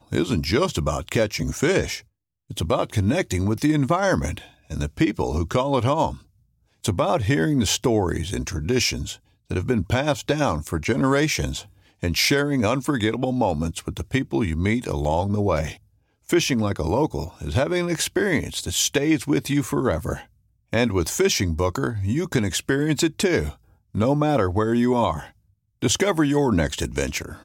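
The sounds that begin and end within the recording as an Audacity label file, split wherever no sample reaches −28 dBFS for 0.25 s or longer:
2.510000	4.380000	sound
4.700000	6.140000	sound
6.840000	9.130000	sound
9.510000	11.610000	sound
12.030000	15.720000	sound
16.290000	20.180000	sound
20.730000	23.500000	sound
23.950000	25.230000	sound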